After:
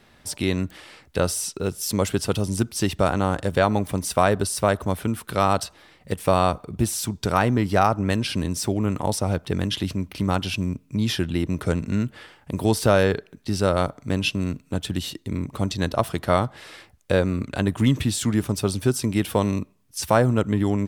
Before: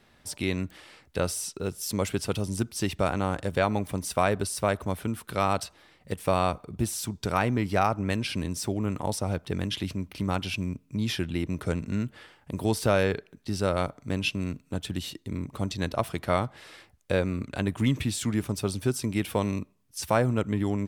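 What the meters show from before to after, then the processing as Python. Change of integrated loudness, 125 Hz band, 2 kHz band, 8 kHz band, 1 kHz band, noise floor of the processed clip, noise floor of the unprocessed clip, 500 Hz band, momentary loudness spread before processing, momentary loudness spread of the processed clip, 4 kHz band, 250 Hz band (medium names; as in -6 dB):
+5.5 dB, +5.5 dB, +4.0 dB, +5.5 dB, +5.5 dB, -56 dBFS, -62 dBFS, +5.5 dB, 9 LU, 9 LU, +5.0 dB, +5.5 dB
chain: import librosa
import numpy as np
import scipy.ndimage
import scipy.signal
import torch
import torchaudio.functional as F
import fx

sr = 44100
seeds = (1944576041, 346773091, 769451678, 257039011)

y = fx.dynamic_eq(x, sr, hz=2300.0, q=4.5, threshold_db=-50.0, ratio=4.0, max_db=-6)
y = F.gain(torch.from_numpy(y), 5.5).numpy()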